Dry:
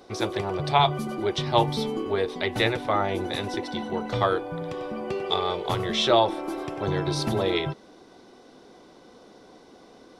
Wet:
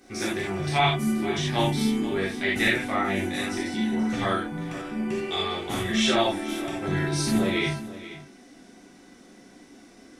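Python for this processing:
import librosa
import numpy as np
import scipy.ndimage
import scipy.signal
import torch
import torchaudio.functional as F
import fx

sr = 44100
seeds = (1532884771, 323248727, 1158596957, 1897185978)

p1 = fx.graphic_eq_10(x, sr, hz=(125, 250, 500, 1000, 2000, 4000, 8000), db=(-7, 4, -9, -10, 6, -9, 7))
p2 = p1 + fx.echo_single(p1, sr, ms=481, db=-15.0, dry=0)
p3 = fx.rev_gated(p2, sr, seeds[0], gate_ms=110, shape='flat', drr_db=-6.5)
y = p3 * 10.0 ** (-3.0 / 20.0)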